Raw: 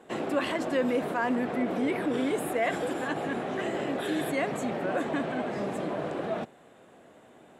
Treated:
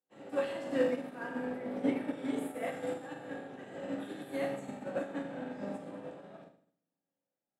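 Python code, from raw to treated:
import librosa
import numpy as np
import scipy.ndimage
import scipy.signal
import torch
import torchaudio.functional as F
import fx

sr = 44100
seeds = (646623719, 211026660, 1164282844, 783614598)

y = fx.rev_fdn(x, sr, rt60_s=1.2, lf_ratio=1.55, hf_ratio=1.0, size_ms=11.0, drr_db=-4.0)
y = fx.upward_expand(y, sr, threshold_db=-41.0, expansion=2.5)
y = y * 10.0 ** (-8.0 / 20.0)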